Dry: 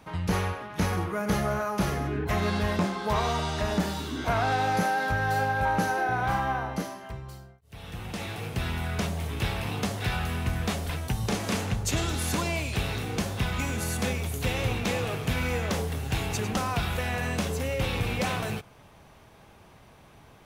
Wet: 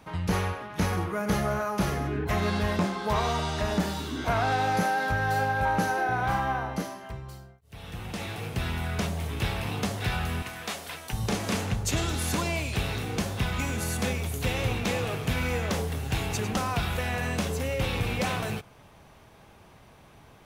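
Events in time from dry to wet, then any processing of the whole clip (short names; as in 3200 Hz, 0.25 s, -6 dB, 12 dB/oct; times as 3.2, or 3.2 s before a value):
10.42–11.13 HPF 780 Hz 6 dB/oct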